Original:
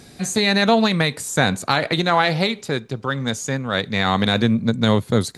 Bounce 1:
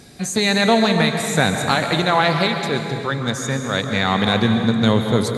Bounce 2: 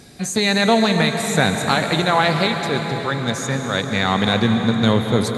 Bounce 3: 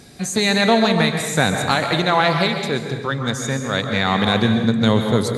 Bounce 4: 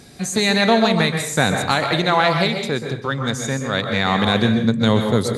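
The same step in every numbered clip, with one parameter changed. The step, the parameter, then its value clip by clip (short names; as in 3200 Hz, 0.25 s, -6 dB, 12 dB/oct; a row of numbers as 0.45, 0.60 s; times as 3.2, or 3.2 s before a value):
plate-style reverb, RT60: 2.5, 5.2, 1.2, 0.53 s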